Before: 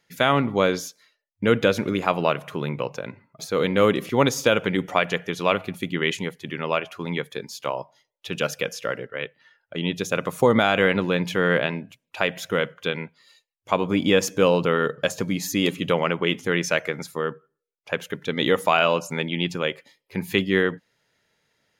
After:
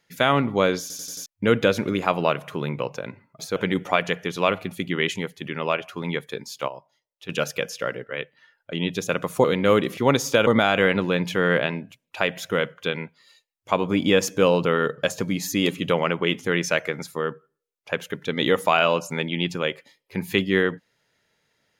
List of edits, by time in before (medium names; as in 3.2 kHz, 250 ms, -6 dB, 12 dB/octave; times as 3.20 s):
0.81 s: stutter in place 0.09 s, 5 plays
3.56–4.59 s: move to 10.47 s
7.71–8.32 s: gain -8.5 dB